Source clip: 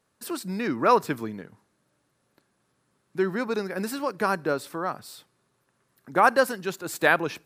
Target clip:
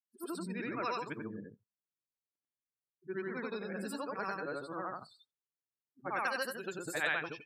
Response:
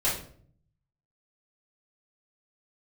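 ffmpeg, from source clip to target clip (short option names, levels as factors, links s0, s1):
-filter_complex "[0:a]afftfilt=real='re':imag='-im':win_size=8192:overlap=0.75,afftdn=nr=35:nf=-44,acrossover=split=1900[s0][s1];[s0]acompressor=threshold=0.0141:ratio=6[s2];[s2][s1]amix=inputs=2:normalize=0"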